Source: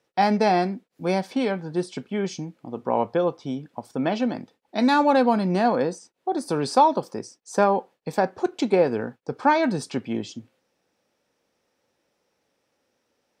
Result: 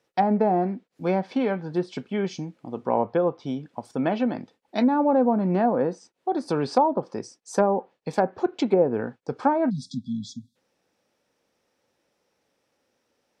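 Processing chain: spectral selection erased 9.70–10.56 s, 270–3300 Hz; low-pass that closes with the level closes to 750 Hz, closed at -15.5 dBFS

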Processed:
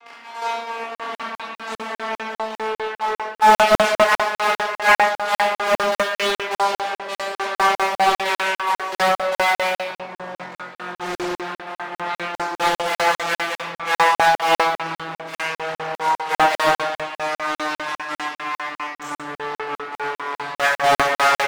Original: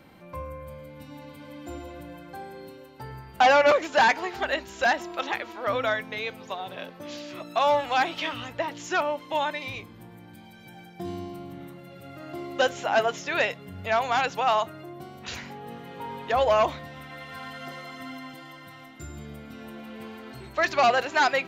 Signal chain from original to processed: vocoder on a note that slides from A#3, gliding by -9 st; in parallel at -5 dB: fuzz box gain 41 dB, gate -43 dBFS; on the sum: trance gate "xxxx.x..xx." 180 bpm -12 dB; reverse; upward compressor, threshold -19 dBFS; reverse; Chebyshev high-pass 840 Hz, order 2; doubling 23 ms -5.5 dB; simulated room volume 730 m³, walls mixed, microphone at 4 m; crackling interface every 0.20 s, samples 2048, zero, from 0.95 s; loudspeaker Doppler distortion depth 0.99 ms; trim -5.5 dB

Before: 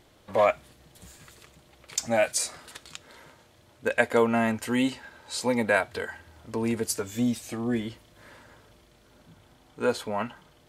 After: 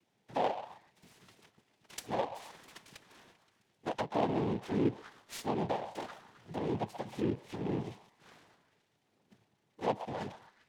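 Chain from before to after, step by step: octave divider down 1 oct, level -4 dB; fifteen-band graphic EQ 160 Hz -7 dB, 1 kHz -12 dB, 6.3 kHz -9 dB; gate -54 dBFS, range -9 dB; dynamic bell 1.8 kHz, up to -5 dB, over -43 dBFS, Q 1.1; low-pass that closes with the level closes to 650 Hz, closed at -22.5 dBFS; noise-vocoded speech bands 6; repeats whose band climbs or falls 131 ms, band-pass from 820 Hz, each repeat 0.7 oct, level -9.5 dB; delay time shaken by noise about 2 kHz, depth 0.034 ms; trim -5 dB

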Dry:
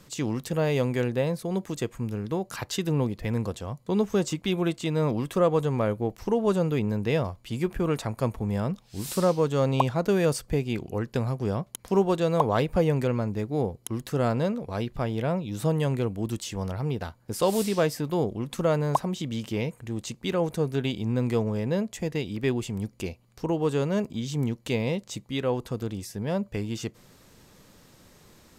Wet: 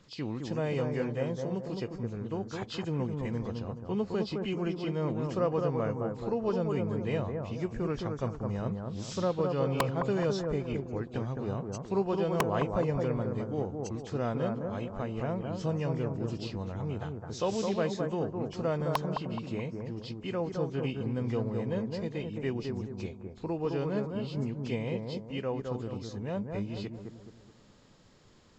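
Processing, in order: knee-point frequency compression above 2.1 kHz 1.5:1; integer overflow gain 10.5 dB; bucket-brigade echo 212 ms, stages 2048, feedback 43%, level -4 dB; trim -7 dB

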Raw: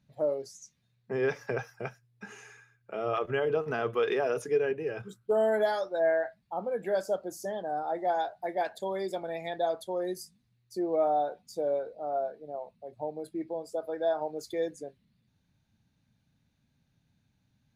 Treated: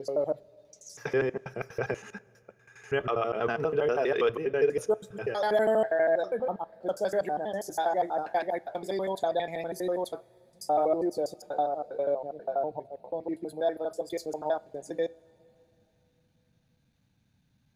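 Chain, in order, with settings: slices played last to first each 81 ms, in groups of 6; two-slope reverb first 0.28 s, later 3.5 s, from -18 dB, DRR 17 dB; trim +2 dB

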